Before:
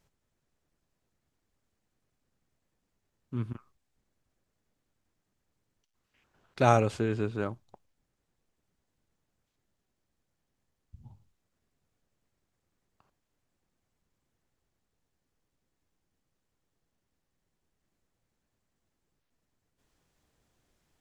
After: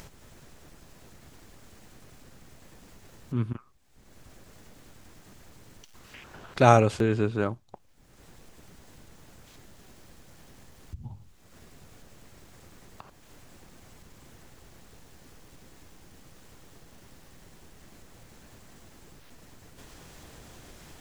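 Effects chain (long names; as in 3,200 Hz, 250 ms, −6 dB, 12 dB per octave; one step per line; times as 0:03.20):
upward compression, threshold −36 dBFS
regular buffer underruns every 0.78 s, samples 256, repeat, from 0:00.75
level +5 dB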